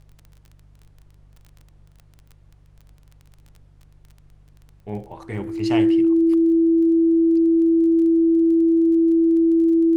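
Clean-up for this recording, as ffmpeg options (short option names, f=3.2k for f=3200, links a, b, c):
-af "adeclick=t=4,bandreject=f=49.5:t=h:w=4,bandreject=f=99:t=h:w=4,bandreject=f=148.5:t=h:w=4,bandreject=f=330:w=30,agate=range=-21dB:threshold=-44dB"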